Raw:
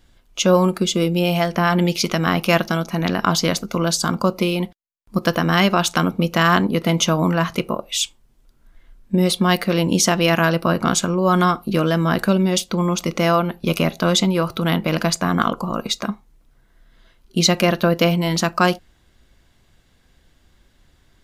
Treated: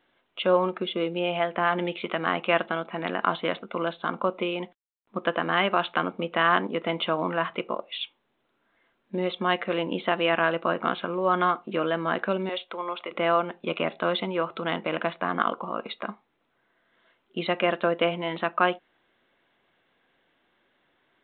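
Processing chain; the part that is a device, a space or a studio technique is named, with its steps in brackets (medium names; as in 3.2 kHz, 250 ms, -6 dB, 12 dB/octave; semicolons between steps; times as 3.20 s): 12.49–13.11 s: high-pass 490 Hz 12 dB/octave; telephone (band-pass 360–3100 Hz; trim -4.5 dB; µ-law 64 kbps 8 kHz)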